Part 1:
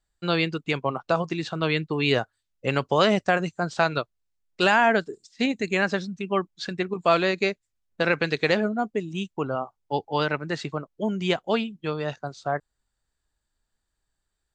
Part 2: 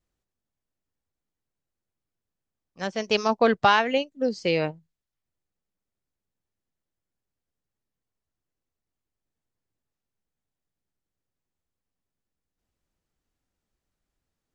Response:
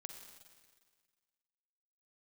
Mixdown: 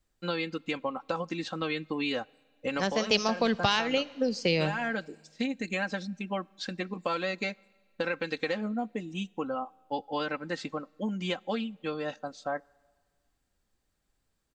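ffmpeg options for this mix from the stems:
-filter_complex "[0:a]aecho=1:1:3.8:0.78,acompressor=threshold=-22dB:ratio=5,volume=-6dB,asplit=2[link_01][link_02];[link_02]volume=-17dB[link_03];[1:a]acrossover=split=180|3000[link_04][link_05][link_06];[link_05]acompressor=threshold=-29dB:ratio=6[link_07];[link_04][link_07][link_06]amix=inputs=3:normalize=0,volume=1.5dB,asplit=3[link_08][link_09][link_10];[link_09]volume=-7dB[link_11];[link_10]apad=whole_len=641499[link_12];[link_01][link_12]sidechaincompress=threshold=-32dB:ratio=8:attack=16:release=225[link_13];[2:a]atrim=start_sample=2205[link_14];[link_03][link_11]amix=inputs=2:normalize=0[link_15];[link_15][link_14]afir=irnorm=-1:irlink=0[link_16];[link_13][link_08][link_16]amix=inputs=3:normalize=0"

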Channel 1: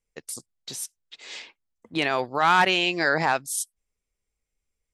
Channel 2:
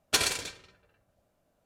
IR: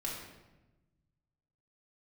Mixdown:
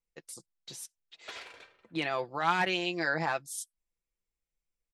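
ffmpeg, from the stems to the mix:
-filter_complex "[0:a]highshelf=frequency=7200:gain=-4.5,aecho=1:1:5.9:0.52,volume=-9dB,asplit=2[link_01][link_02];[1:a]highshelf=frequency=3900:gain=-6,acompressor=threshold=-34dB:ratio=4,acrossover=split=430 3300:gain=0.158 1 0.158[link_03][link_04][link_05];[link_03][link_04][link_05]amix=inputs=3:normalize=0,adelay=1150,volume=0dB[link_06];[link_02]apad=whole_len=123642[link_07];[link_06][link_07]sidechaingate=range=-6dB:threshold=-45dB:ratio=16:detection=peak[link_08];[link_01][link_08]amix=inputs=2:normalize=0"

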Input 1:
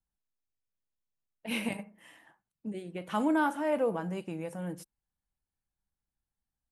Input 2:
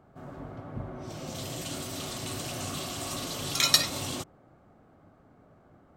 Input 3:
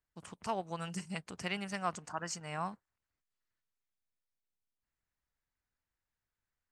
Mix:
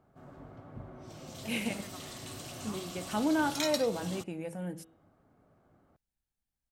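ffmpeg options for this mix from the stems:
ffmpeg -i stem1.wav -i stem2.wav -i stem3.wav -filter_complex "[0:a]equalizer=frequency=1100:width_type=o:width=0.43:gain=-7,bandreject=frequency=163.2:width_type=h:width=4,bandreject=frequency=326.4:width_type=h:width=4,bandreject=frequency=489.6:width_type=h:width=4,bandreject=frequency=652.8:width_type=h:width=4,bandreject=frequency=816:width_type=h:width=4,bandreject=frequency=979.2:width_type=h:width=4,bandreject=frequency=1142.4:width_type=h:width=4,bandreject=frequency=1305.6:width_type=h:width=4,bandreject=frequency=1468.8:width_type=h:width=4,bandreject=frequency=1632:width_type=h:width=4,bandreject=frequency=1795.2:width_type=h:width=4,bandreject=frequency=1958.4:width_type=h:width=4,bandreject=frequency=2121.6:width_type=h:width=4,bandreject=frequency=2284.8:width_type=h:width=4,bandreject=frequency=2448:width_type=h:width=4,bandreject=frequency=2611.2:width_type=h:width=4,bandreject=frequency=2774.4:width_type=h:width=4,bandreject=frequency=2937.6:width_type=h:width=4,bandreject=frequency=3100.8:width_type=h:width=4,bandreject=frequency=3264:width_type=h:width=4,bandreject=frequency=3427.2:width_type=h:width=4,bandreject=frequency=3590.4:width_type=h:width=4,bandreject=frequency=3753.6:width_type=h:width=4,volume=-0.5dB,asplit=2[link_01][link_02];[1:a]alimiter=limit=-11.5dB:level=0:latency=1:release=491,volume=-8dB[link_03];[2:a]adelay=100,volume=-14dB[link_04];[link_02]apad=whole_len=300520[link_05];[link_04][link_05]sidechaingate=range=-33dB:threshold=-54dB:ratio=16:detection=peak[link_06];[link_01][link_03][link_06]amix=inputs=3:normalize=0" out.wav

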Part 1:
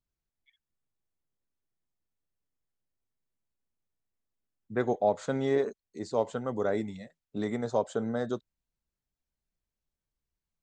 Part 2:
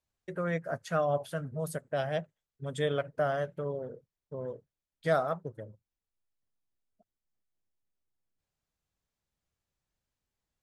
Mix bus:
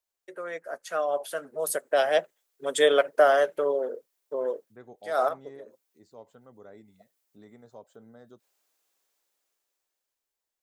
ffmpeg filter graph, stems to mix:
ffmpeg -i stem1.wav -i stem2.wav -filter_complex "[0:a]volume=-20dB,asplit=2[link_01][link_02];[1:a]crystalizer=i=1:c=0,highpass=frequency=340:width=0.5412,highpass=frequency=340:width=1.3066,dynaudnorm=framelen=290:gausssize=11:maxgain=14dB,volume=-2.5dB[link_03];[link_02]apad=whole_len=468705[link_04];[link_03][link_04]sidechaincompress=threshold=-57dB:ratio=8:attack=9.2:release=102[link_05];[link_01][link_05]amix=inputs=2:normalize=0" out.wav

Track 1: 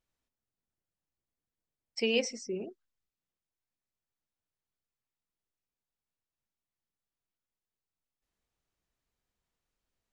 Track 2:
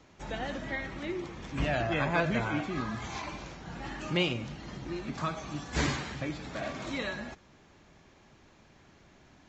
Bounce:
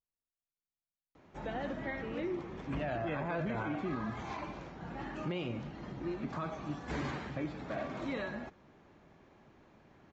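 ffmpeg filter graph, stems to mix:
ffmpeg -i stem1.wav -i stem2.wav -filter_complex "[0:a]lowpass=1500,volume=-14dB[link_01];[1:a]lowpass=frequency=1100:poles=1,lowshelf=frequency=110:gain=-8.5,adelay=1150,volume=1dB[link_02];[link_01][link_02]amix=inputs=2:normalize=0,alimiter=level_in=4dB:limit=-24dB:level=0:latency=1:release=35,volume=-4dB" out.wav

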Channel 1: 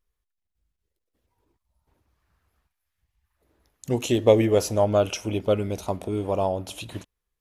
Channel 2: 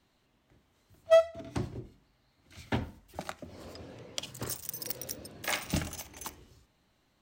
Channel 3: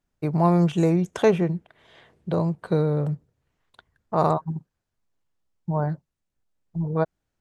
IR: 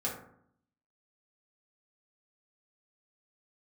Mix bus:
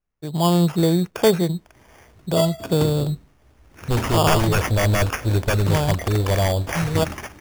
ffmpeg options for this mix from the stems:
-filter_complex "[0:a]aeval=exprs='0.112*(abs(mod(val(0)/0.112+3,4)-2)-1)':channel_layout=same,asubboost=boost=6.5:cutoff=92,volume=-6.5dB[link_01];[1:a]alimiter=limit=-23.5dB:level=0:latency=1:release=107,adelay=1250,volume=-2.5dB[link_02];[2:a]volume=-9dB[link_03];[link_01][link_02][link_03]amix=inputs=3:normalize=0,dynaudnorm=framelen=140:gausssize=5:maxgain=11.5dB,acrusher=samples=11:mix=1:aa=0.000001"

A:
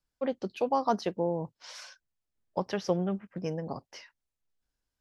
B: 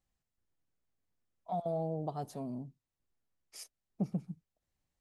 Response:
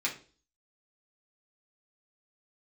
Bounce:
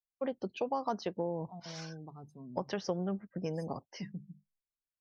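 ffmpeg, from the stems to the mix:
-filter_complex "[0:a]volume=-1dB[link_01];[1:a]bandreject=frequency=50:width_type=h:width=6,bandreject=frequency=100:width_type=h:width=6,bandreject=frequency=150:width_type=h:width=6,bandreject=frequency=200:width_type=h:width=6,aecho=1:1:0.8:0.66,volume=-10dB[link_02];[link_01][link_02]amix=inputs=2:normalize=0,afftdn=noise_reduction=23:noise_floor=-54,acompressor=threshold=-32dB:ratio=2.5"

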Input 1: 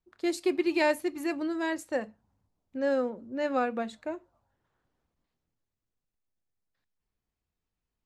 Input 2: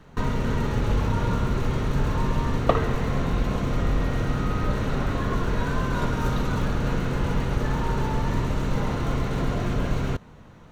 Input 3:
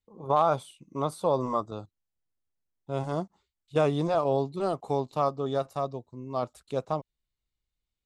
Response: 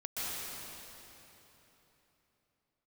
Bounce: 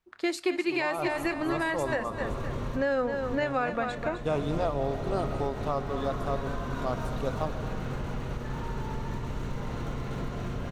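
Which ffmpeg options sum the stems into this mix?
-filter_complex "[0:a]equalizer=frequency=1700:width=0.43:gain=9.5,volume=1.5dB,asplit=3[link_01][link_02][link_03];[link_02]volume=-10dB[link_04];[1:a]acompressor=threshold=-25dB:ratio=6,adelay=800,volume=-5dB,asplit=2[link_05][link_06];[link_06]volume=-9.5dB[link_07];[2:a]adelay=500,volume=-3.5dB,asplit=2[link_08][link_09];[link_09]volume=-10.5dB[link_10];[link_03]apad=whole_len=507793[link_11];[link_05][link_11]sidechaincompress=threshold=-34dB:ratio=8:attack=11:release=295[link_12];[3:a]atrim=start_sample=2205[link_13];[link_10][link_13]afir=irnorm=-1:irlink=0[link_14];[link_04][link_07]amix=inputs=2:normalize=0,aecho=0:1:258|516|774|1032|1290:1|0.33|0.109|0.0359|0.0119[link_15];[link_01][link_12][link_08][link_14][link_15]amix=inputs=5:normalize=0,alimiter=limit=-17.5dB:level=0:latency=1:release=340"

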